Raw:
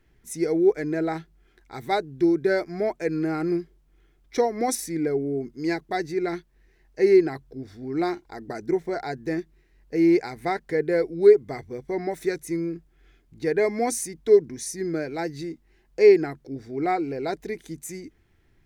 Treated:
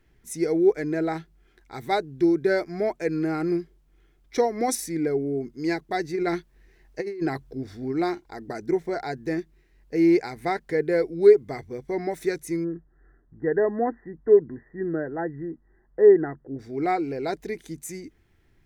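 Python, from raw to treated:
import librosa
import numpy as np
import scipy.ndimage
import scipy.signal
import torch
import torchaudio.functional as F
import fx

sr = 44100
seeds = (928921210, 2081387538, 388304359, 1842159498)

y = fx.over_compress(x, sr, threshold_db=-26.0, ratio=-1.0, at=(6.13, 7.91), fade=0.02)
y = fx.brickwall_lowpass(y, sr, high_hz=2000.0, at=(12.63, 16.58), fade=0.02)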